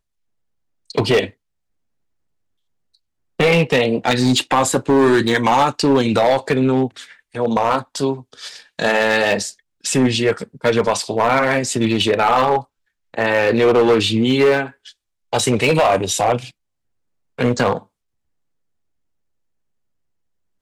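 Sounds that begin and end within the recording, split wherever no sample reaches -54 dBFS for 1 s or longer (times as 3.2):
2.94–17.86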